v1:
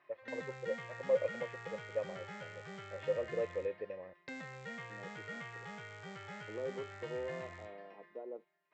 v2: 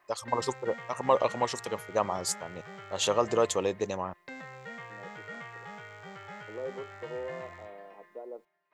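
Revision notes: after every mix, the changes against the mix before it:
first voice: remove formant resonators in series e
master: add parametric band 910 Hz +5.5 dB 1.8 octaves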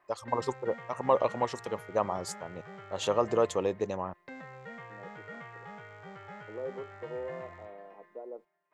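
master: add high-shelf EQ 2,400 Hz −10 dB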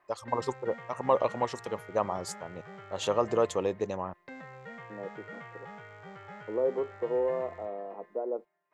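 second voice +10.0 dB

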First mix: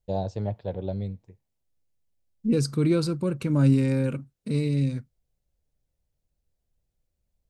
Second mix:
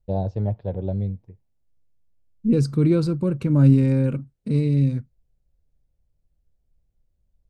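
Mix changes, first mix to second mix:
first voice: add high-frequency loss of the air 110 metres
master: add spectral tilt −2 dB per octave

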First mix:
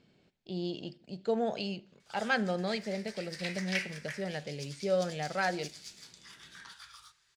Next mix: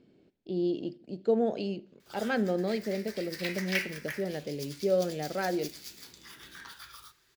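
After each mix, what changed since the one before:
background +7.5 dB
master: remove drawn EQ curve 170 Hz 0 dB, 310 Hz −10 dB, 850 Hz +3 dB, 8,700 Hz +7 dB, 16,000 Hz −19 dB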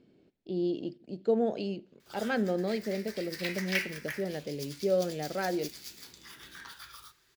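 speech: send −7.0 dB

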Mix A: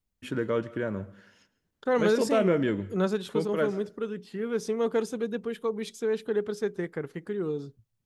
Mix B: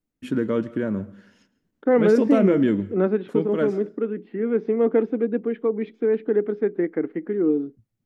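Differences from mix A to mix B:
second voice: add loudspeaker in its box 240–2,400 Hz, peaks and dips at 310 Hz +10 dB, 490 Hz +4 dB, 720 Hz +4 dB, 1,000 Hz −3 dB, 2,100 Hz +5 dB
master: add parametric band 240 Hz +10.5 dB 1.2 octaves

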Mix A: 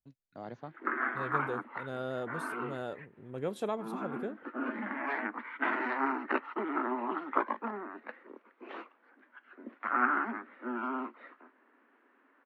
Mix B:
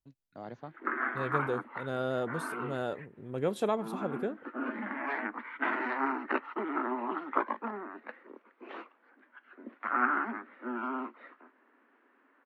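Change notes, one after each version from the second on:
second voice +4.5 dB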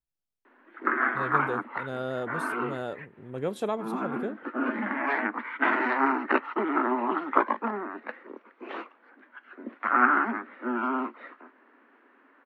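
first voice: muted
background +7.0 dB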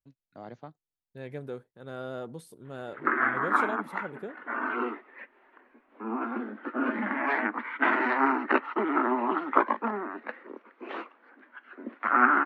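first voice: unmuted
second voice −5.0 dB
background: entry +2.20 s

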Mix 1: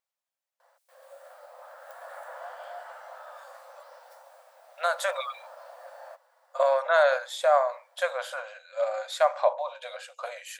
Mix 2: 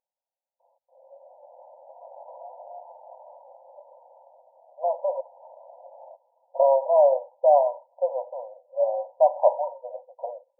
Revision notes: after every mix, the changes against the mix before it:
speech +4.5 dB
master: add linear-phase brick-wall low-pass 1,000 Hz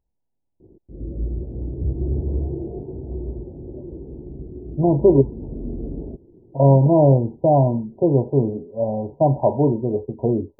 background: add low-pass with resonance 380 Hz, resonance Q 4.7
master: remove linear-phase brick-wall high-pass 500 Hz

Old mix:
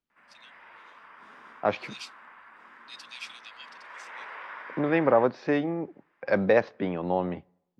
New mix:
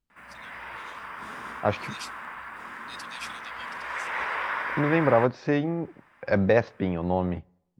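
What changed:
background +11.5 dB
master: remove three-way crossover with the lows and the highs turned down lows −15 dB, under 180 Hz, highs −13 dB, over 5,900 Hz

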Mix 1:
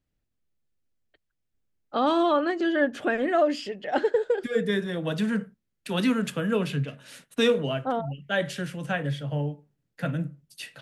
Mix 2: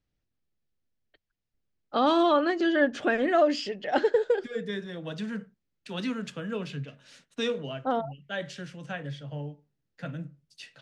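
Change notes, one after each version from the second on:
second voice −8.0 dB
master: add low-pass with resonance 5,900 Hz, resonance Q 1.5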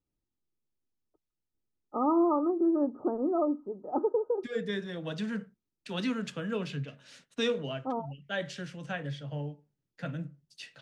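first voice: add Chebyshev low-pass with heavy ripple 1,300 Hz, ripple 9 dB

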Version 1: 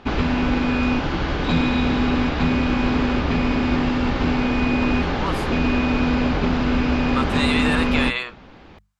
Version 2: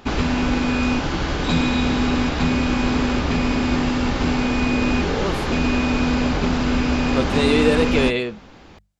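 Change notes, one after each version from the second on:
speech: remove high-pass with resonance 1,100 Hz, resonance Q 2.6
background: remove low-pass filter 3,900 Hz 12 dB per octave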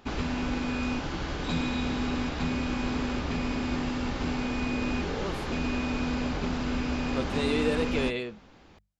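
speech −10.0 dB
background −10.0 dB

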